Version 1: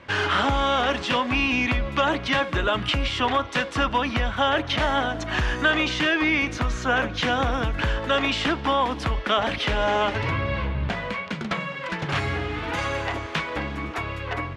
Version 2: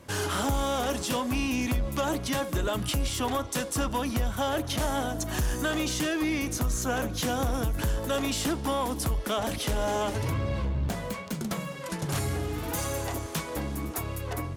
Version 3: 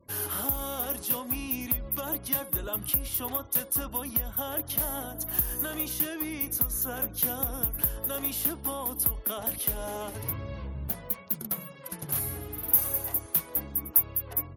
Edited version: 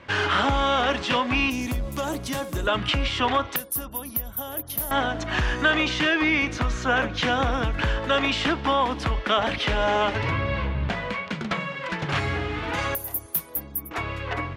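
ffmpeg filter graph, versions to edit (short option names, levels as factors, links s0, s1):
-filter_complex "[2:a]asplit=2[s0][s1];[0:a]asplit=4[s2][s3][s4][s5];[s2]atrim=end=1.502[s6];[1:a]atrim=start=1.498:end=2.672[s7];[s3]atrim=start=2.668:end=3.562[s8];[s0]atrim=start=3.558:end=4.912[s9];[s4]atrim=start=4.908:end=12.952[s10];[s1]atrim=start=12.948:end=13.912[s11];[s5]atrim=start=13.908[s12];[s6][s7]acrossfade=d=0.004:c1=hsin:c2=hsin[s13];[s13][s8]acrossfade=d=0.004:c1=hsin:c2=hsin[s14];[s14][s9]acrossfade=d=0.004:c1=hsin:c2=hsin[s15];[s15][s10]acrossfade=d=0.004:c1=hsin:c2=hsin[s16];[s16][s11]acrossfade=d=0.004:c1=hsin:c2=hsin[s17];[s17][s12]acrossfade=d=0.004:c1=hsin:c2=hsin"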